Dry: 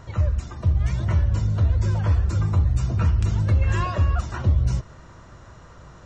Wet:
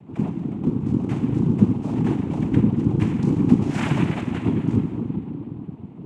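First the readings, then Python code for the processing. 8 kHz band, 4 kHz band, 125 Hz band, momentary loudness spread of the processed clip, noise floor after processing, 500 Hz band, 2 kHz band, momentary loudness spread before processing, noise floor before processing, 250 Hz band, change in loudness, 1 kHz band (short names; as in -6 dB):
n/a, 0.0 dB, -3.0 dB, 10 LU, -39 dBFS, +6.5 dB, -0.5 dB, 3 LU, -46 dBFS, +15.0 dB, +0.5 dB, -1.5 dB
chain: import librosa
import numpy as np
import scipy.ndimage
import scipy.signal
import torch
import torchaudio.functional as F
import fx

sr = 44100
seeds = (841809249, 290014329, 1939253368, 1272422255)

y = fx.wiener(x, sr, points=41)
y = fx.low_shelf(y, sr, hz=200.0, db=5.5)
y = fx.room_shoebox(y, sr, seeds[0], volume_m3=120.0, walls='hard', distance_m=0.32)
y = fx.noise_vocoder(y, sr, seeds[1], bands=4)
y = y * 10.0 ** (-1.0 / 20.0)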